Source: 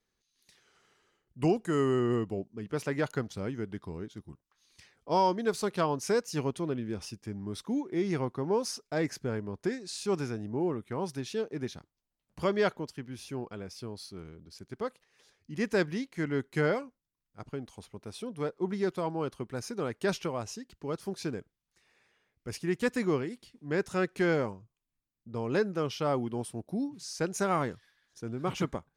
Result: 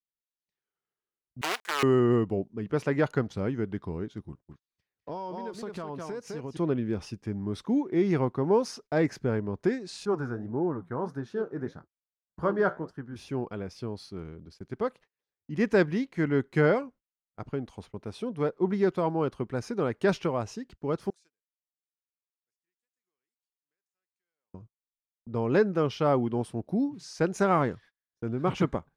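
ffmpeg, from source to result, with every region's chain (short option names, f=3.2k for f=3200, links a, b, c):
-filter_complex "[0:a]asettb=1/sr,asplit=3[a][b][c];[a]atrim=end=1.414[d];[b]atrim=start=1.41:end=1.83,asetpts=PTS-STARTPTS,afade=t=in:d=0.004:c=qsin,afade=t=out:st=0.416:d=0.004:c=qsin,acrusher=bits=5:dc=4:mix=0:aa=0.000001,highpass=830,tiltshelf=f=1.2k:g=-5[e];[c]atrim=start=1.826[f];[d][e]acrossfade=d=0.004:c1=hsin:c2=qsin[g];[g][f]acrossfade=d=0.004:c1=qsin:c2=hsin,asettb=1/sr,asplit=3[h][i][j];[h]atrim=end=4.254[k];[i]atrim=start=4.25:end=6.57,asetpts=PTS-STARTPTS,afade=t=in:d=0.004:c=qsin,afade=t=out:st=2.316:d=0.004:c=qsin,aecho=1:1:206:0.447,atrim=end_sample=102312,acompressor=threshold=-38dB:ratio=8:attack=3.2:release=140:knee=1:detection=peak[l];[j]atrim=start=6.566[m];[k][l]acrossfade=d=0.004:c1=hsin:c2=qsin[n];[n][m]acrossfade=d=0.004:c1=qsin:c2=hsin,asettb=1/sr,asplit=3[o][p][q];[o]atrim=end=10.054[r];[p]atrim=start=10.05:end=13.16,asetpts=PTS-STARTPTS,afade=t=in:d=0.004:c=qsin,afade=t=out:st=3.106:d=0.004:c=qsin,highshelf=f=1.9k:t=q:w=3:g=-7,flanger=delay=6.2:depth=9.8:regen=-66:speed=1.7:shape=sinusoidal[s];[q]atrim=start=13.156[t];[r][s]acrossfade=d=0.004:c1=hsin:c2=qsin[u];[u][t]acrossfade=d=0.004:c1=qsin:c2=hsin,asettb=1/sr,asplit=3[v][w][x];[v]atrim=end=21.104[y];[w]atrim=start=21.1:end=24.54,asetpts=PTS-STARTPTS,afade=t=in:d=0.004:c=qsin,afade=t=out:st=3.436:d=0.004:c=qsin,bandpass=f=8k:t=q:w=2.4,acompressor=threshold=-58dB:ratio=16:attack=3.2:release=140:knee=1:detection=peak[z];[x]atrim=start=24.536[aa];[y][z]acrossfade=d=0.004:c1=hsin:c2=qsin[ab];[ab][aa]acrossfade=d=0.004:c1=qsin:c2=hsin,lowpass=f=2k:p=1,agate=range=-31dB:threshold=-55dB:ratio=16:detection=peak,volume=5.5dB"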